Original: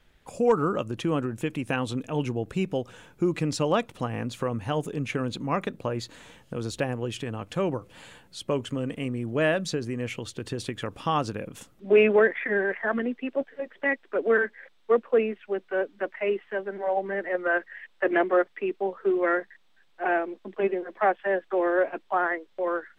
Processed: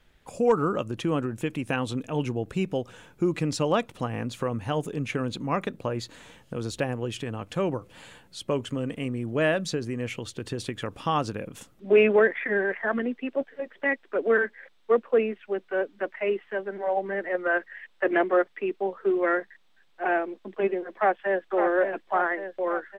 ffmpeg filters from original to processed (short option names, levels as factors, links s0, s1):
-filter_complex "[0:a]asplit=2[s0][s1];[s1]afade=t=in:st=20.94:d=0.01,afade=t=out:st=21.44:d=0.01,aecho=0:1:560|1120|1680|2240|2800|3360|3920|4480:0.473151|0.283891|0.170334|0.102201|0.0613204|0.0367922|0.0220753|0.0132452[s2];[s0][s2]amix=inputs=2:normalize=0"